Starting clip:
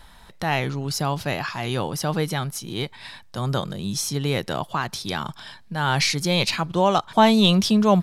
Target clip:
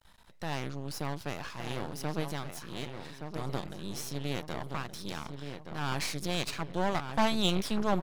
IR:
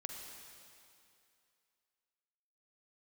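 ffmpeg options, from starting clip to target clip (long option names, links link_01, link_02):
-filter_complex "[0:a]asplit=2[link_01][link_02];[link_02]adelay=1172,lowpass=frequency=2100:poles=1,volume=-7dB,asplit=2[link_03][link_04];[link_04]adelay=1172,lowpass=frequency=2100:poles=1,volume=0.47,asplit=2[link_05][link_06];[link_06]adelay=1172,lowpass=frequency=2100:poles=1,volume=0.47,asplit=2[link_07][link_08];[link_08]adelay=1172,lowpass=frequency=2100:poles=1,volume=0.47,asplit=2[link_09][link_10];[link_10]adelay=1172,lowpass=frequency=2100:poles=1,volume=0.47,asplit=2[link_11][link_12];[link_12]adelay=1172,lowpass=frequency=2100:poles=1,volume=0.47[link_13];[link_01][link_03][link_05][link_07][link_09][link_11][link_13]amix=inputs=7:normalize=0,aeval=exprs='max(val(0),0)':channel_layout=same,volume=-8.5dB"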